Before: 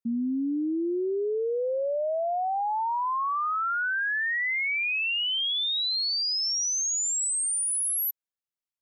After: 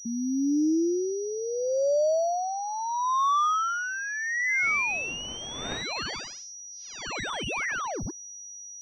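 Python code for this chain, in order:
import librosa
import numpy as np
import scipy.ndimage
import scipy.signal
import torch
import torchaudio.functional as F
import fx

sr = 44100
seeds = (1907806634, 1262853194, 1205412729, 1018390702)

y = fx.spec_ripple(x, sr, per_octave=0.64, drift_hz=1.2, depth_db=10)
y = fx.dmg_wind(y, sr, seeds[0], corner_hz=620.0, level_db=-40.0, at=(4.62, 5.82), fade=0.02)
y = fx.pwm(y, sr, carrier_hz=5800.0)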